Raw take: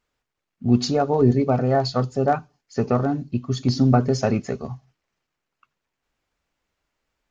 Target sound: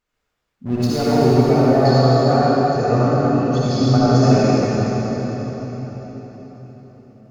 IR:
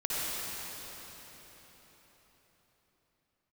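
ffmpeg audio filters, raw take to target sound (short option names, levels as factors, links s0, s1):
-filter_complex "[0:a]asplit=3[s0][s1][s2];[s0]afade=t=out:st=0.65:d=0.02[s3];[s1]aeval=exprs='sgn(val(0))*max(abs(val(0))-0.0282,0)':c=same,afade=t=in:st=0.65:d=0.02,afade=t=out:st=1.18:d=0.02[s4];[s2]afade=t=in:st=1.18:d=0.02[s5];[s3][s4][s5]amix=inputs=3:normalize=0[s6];[1:a]atrim=start_sample=2205[s7];[s6][s7]afir=irnorm=-1:irlink=0,volume=0.794"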